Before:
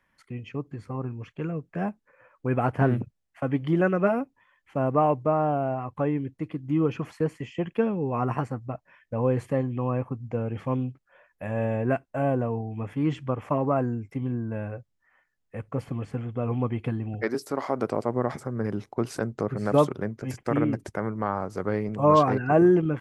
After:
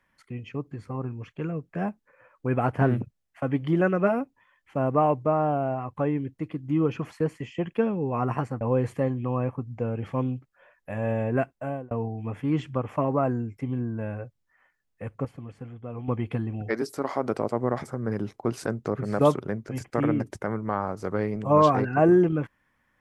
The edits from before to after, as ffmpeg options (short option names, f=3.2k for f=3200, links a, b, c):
-filter_complex "[0:a]asplit=5[a][b][c][d][e];[a]atrim=end=8.612[f];[b]atrim=start=9.138:end=12.44,asetpts=PTS-STARTPTS,afade=t=out:st=2.892:d=0.41[g];[c]atrim=start=12.44:end=15.782,asetpts=PTS-STARTPTS,afade=t=in:d=0.004:c=hsin[h];[d]atrim=start=15.778:end=16.612,asetpts=PTS-STARTPTS,volume=-8.5dB[i];[e]atrim=start=16.608[j];[g][h]concat=n=2:v=0:a=1[k];[f][k]acrossfade=d=0.004:c1=hsin:c2=hsin[l];[l][i]acrossfade=d=0.004:c1=hsin:c2=hsin[m];[m][j]acrossfade=d=0.004:c1=hsin:c2=hsin"